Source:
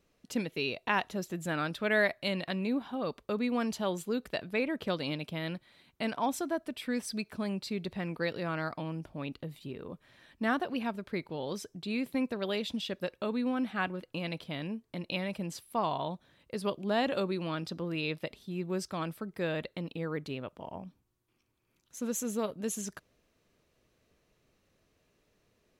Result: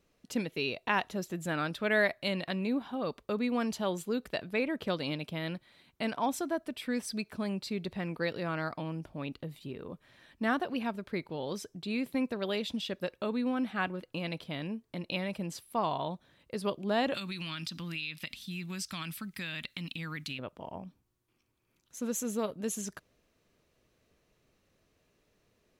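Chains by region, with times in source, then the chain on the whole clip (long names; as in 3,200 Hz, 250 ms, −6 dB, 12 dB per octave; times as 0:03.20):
0:17.14–0:20.39: drawn EQ curve 260 Hz 0 dB, 440 Hz −18 dB, 960 Hz −4 dB, 2,500 Hz +11 dB + downward compressor 5 to 1, threshold −34 dBFS
whole clip: no processing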